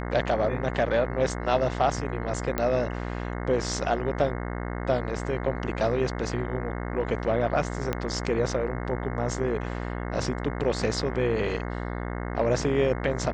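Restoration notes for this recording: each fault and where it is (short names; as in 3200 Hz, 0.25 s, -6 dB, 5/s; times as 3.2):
buzz 60 Hz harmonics 36 -32 dBFS
2.58 pop -12 dBFS
7.93 pop -13 dBFS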